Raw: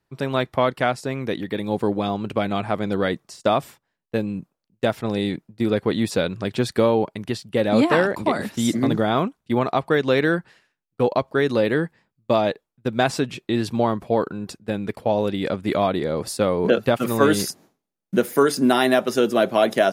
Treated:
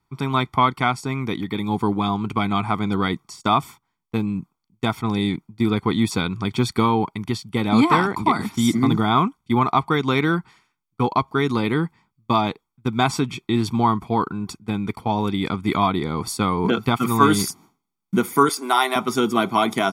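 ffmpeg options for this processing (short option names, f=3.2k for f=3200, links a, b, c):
-filter_complex "[0:a]asettb=1/sr,asplit=3[a][b][c];[a]atrim=end=18.494[d];[b]atrim=start=18.49:end=18.96,asetpts=PTS-STARTPTS,afade=t=in:d=0.004:c=qsin,afade=t=out:st=0.466:d=0.004:c=qsin,highpass=f=430:w=0.5412,highpass=f=430:w=1.3066[e];[c]atrim=start=18.956[f];[d][e]acrossfade=d=0.004:c1=hsin:c2=qsin[g];[g][f]acrossfade=d=0.004:c1=qsin:c2=hsin,equalizer=f=1k:w=1.7:g=4,aecho=1:1:0.9:0.9,volume=-1dB"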